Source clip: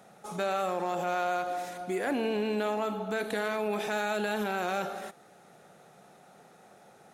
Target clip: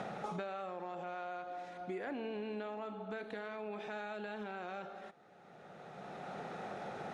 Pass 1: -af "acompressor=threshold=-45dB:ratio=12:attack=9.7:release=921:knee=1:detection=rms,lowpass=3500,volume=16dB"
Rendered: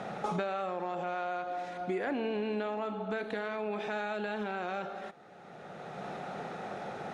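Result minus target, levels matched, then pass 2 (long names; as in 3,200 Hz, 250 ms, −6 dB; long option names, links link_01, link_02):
downward compressor: peak gain reduction −8 dB
-af "acompressor=threshold=-53.5dB:ratio=12:attack=9.7:release=921:knee=1:detection=rms,lowpass=3500,volume=16dB"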